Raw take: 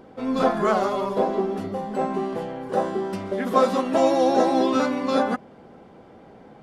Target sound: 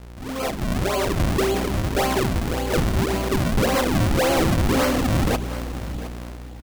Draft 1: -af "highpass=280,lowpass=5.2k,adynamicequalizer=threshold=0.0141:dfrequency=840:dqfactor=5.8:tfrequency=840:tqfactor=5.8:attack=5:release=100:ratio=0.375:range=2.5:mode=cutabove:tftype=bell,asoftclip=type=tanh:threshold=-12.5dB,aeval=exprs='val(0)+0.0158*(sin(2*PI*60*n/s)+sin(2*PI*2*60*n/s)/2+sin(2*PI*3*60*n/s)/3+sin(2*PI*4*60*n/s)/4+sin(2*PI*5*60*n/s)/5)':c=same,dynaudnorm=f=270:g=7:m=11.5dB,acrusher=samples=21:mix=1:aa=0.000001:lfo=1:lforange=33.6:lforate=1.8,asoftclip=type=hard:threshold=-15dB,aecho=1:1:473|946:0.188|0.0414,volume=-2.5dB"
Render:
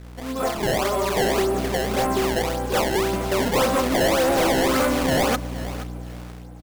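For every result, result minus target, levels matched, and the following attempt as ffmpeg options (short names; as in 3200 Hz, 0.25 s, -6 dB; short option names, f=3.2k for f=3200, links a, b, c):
echo 0.24 s early; decimation with a swept rate: distortion -9 dB; soft clip: distortion -8 dB
-af "highpass=280,lowpass=5.2k,adynamicequalizer=threshold=0.0141:dfrequency=840:dqfactor=5.8:tfrequency=840:tqfactor=5.8:attack=5:release=100:ratio=0.375:range=2.5:mode=cutabove:tftype=bell,asoftclip=type=tanh:threshold=-12.5dB,aeval=exprs='val(0)+0.0158*(sin(2*PI*60*n/s)+sin(2*PI*2*60*n/s)/2+sin(2*PI*3*60*n/s)/3+sin(2*PI*4*60*n/s)/4+sin(2*PI*5*60*n/s)/5)':c=same,dynaudnorm=f=270:g=7:m=11.5dB,acrusher=samples=21:mix=1:aa=0.000001:lfo=1:lforange=33.6:lforate=1.8,asoftclip=type=hard:threshold=-15dB,aecho=1:1:713|1426:0.188|0.0414,volume=-2.5dB"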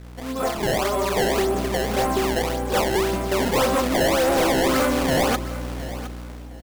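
decimation with a swept rate: distortion -9 dB; soft clip: distortion -8 dB
-af "highpass=280,lowpass=5.2k,adynamicequalizer=threshold=0.0141:dfrequency=840:dqfactor=5.8:tfrequency=840:tqfactor=5.8:attack=5:release=100:ratio=0.375:range=2.5:mode=cutabove:tftype=bell,asoftclip=type=tanh:threshold=-12.5dB,aeval=exprs='val(0)+0.0158*(sin(2*PI*60*n/s)+sin(2*PI*2*60*n/s)/2+sin(2*PI*3*60*n/s)/3+sin(2*PI*4*60*n/s)/4+sin(2*PI*5*60*n/s)/5)':c=same,dynaudnorm=f=270:g=7:m=11.5dB,acrusher=samples=59:mix=1:aa=0.000001:lfo=1:lforange=94.4:lforate=1.8,asoftclip=type=hard:threshold=-15dB,aecho=1:1:713|1426:0.188|0.0414,volume=-2.5dB"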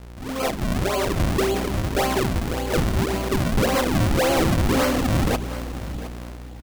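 soft clip: distortion -8 dB
-af "highpass=280,lowpass=5.2k,adynamicequalizer=threshold=0.0141:dfrequency=840:dqfactor=5.8:tfrequency=840:tqfactor=5.8:attack=5:release=100:ratio=0.375:range=2.5:mode=cutabove:tftype=bell,asoftclip=type=tanh:threshold=-19dB,aeval=exprs='val(0)+0.0158*(sin(2*PI*60*n/s)+sin(2*PI*2*60*n/s)/2+sin(2*PI*3*60*n/s)/3+sin(2*PI*4*60*n/s)/4+sin(2*PI*5*60*n/s)/5)':c=same,dynaudnorm=f=270:g=7:m=11.5dB,acrusher=samples=59:mix=1:aa=0.000001:lfo=1:lforange=94.4:lforate=1.8,asoftclip=type=hard:threshold=-15dB,aecho=1:1:713|1426:0.188|0.0414,volume=-2.5dB"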